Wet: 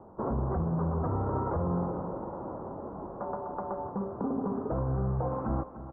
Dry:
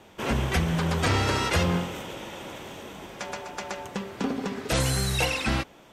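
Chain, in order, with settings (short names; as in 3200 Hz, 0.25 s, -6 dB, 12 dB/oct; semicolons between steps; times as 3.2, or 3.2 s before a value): steep low-pass 1200 Hz 48 dB/oct; limiter -25 dBFS, peak gain reduction 11.5 dB; echo 0.298 s -13 dB; gain +2 dB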